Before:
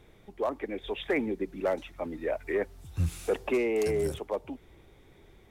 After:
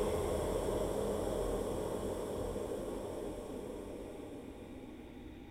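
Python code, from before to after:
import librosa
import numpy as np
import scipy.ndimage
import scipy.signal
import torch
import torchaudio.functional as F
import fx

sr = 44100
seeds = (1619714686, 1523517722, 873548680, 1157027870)

y = fx.spec_steps(x, sr, hold_ms=400)
y = fx.dereverb_blind(y, sr, rt60_s=1.2)
y = fx.paulstretch(y, sr, seeds[0], factor=11.0, window_s=1.0, from_s=4.3)
y = y * librosa.db_to_amplitude(9.0)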